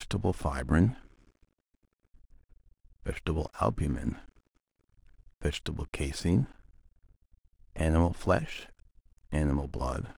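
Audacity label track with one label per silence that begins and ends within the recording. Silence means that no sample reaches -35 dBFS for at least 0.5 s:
0.940000	3.060000	silence
4.130000	5.420000	silence
6.450000	7.760000	silence
8.630000	9.330000	silence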